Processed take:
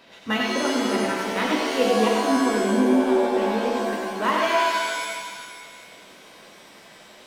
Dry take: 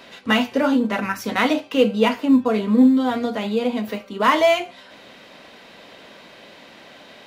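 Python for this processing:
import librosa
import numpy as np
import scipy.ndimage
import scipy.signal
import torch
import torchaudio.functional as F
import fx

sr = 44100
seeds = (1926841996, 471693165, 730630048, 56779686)

y = fx.transient(x, sr, attack_db=1, sustain_db=-7)
y = y + 10.0 ** (-4.0 / 20.0) * np.pad(y, (int(95 * sr / 1000.0), 0))[:len(y)]
y = fx.rev_shimmer(y, sr, seeds[0], rt60_s=1.7, semitones=7, shimmer_db=-2, drr_db=2.0)
y = F.gain(torch.from_numpy(y), -8.0).numpy()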